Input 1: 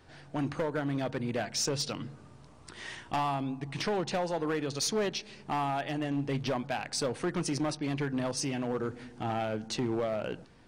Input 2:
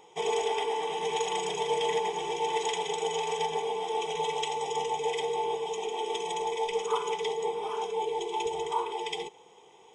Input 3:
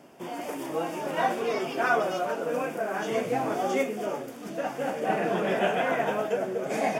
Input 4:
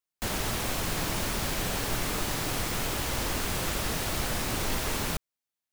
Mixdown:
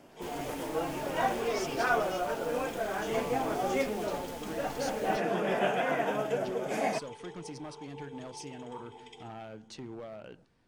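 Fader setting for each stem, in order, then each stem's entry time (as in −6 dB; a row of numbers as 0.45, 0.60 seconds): −12.0, −17.0, −3.5, −18.0 decibels; 0.00, 0.00, 0.00, 0.00 seconds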